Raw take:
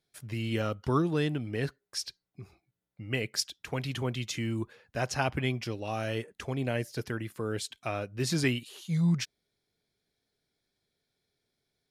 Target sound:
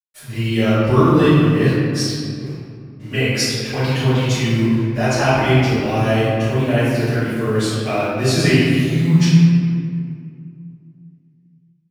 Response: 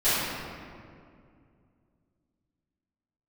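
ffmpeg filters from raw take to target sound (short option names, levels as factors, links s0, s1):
-filter_complex "[0:a]acontrast=68,acrusher=bits=7:mix=0:aa=0.5[s0];[1:a]atrim=start_sample=2205[s1];[s0][s1]afir=irnorm=-1:irlink=0,volume=0.398"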